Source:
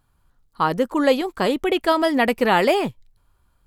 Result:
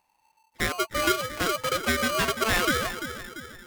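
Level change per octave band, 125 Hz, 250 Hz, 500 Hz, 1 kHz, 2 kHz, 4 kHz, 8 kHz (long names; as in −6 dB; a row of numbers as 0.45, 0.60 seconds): −2.0, −10.5, −10.0, −6.5, −0.5, 0.0, +10.5 decibels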